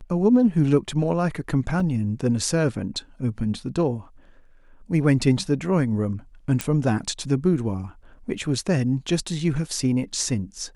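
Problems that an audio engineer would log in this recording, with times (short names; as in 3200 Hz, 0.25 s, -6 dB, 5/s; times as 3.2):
1.8 gap 3.7 ms
6.61 pop -8 dBFS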